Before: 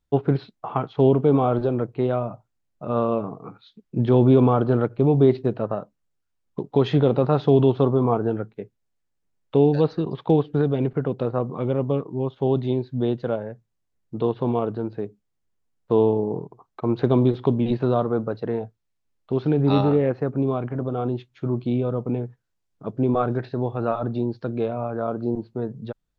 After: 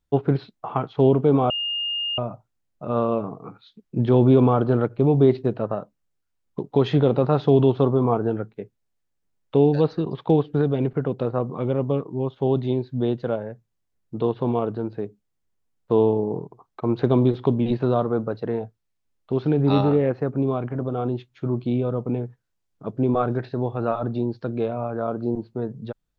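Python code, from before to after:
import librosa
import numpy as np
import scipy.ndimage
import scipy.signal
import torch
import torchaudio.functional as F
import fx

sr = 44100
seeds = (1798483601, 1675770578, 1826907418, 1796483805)

y = fx.edit(x, sr, fx.bleep(start_s=1.5, length_s=0.68, hz=2830.0, db=-23.5), tone=tone)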